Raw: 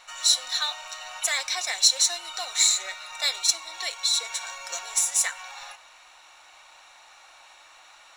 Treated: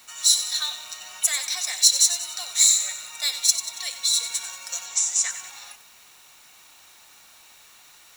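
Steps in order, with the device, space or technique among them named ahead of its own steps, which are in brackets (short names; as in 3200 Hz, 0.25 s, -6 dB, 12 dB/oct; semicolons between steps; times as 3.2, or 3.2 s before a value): turntable without a phono preamp (RIAA curve recording; white noise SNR 30 dB); 4.85–5.31 elliptic band-pass 350–6900 Hz, stop band 40 dB; lo-fi delay 93 ms, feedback 55%, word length 6-bit, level -10.5 dB; gain -6.5 dB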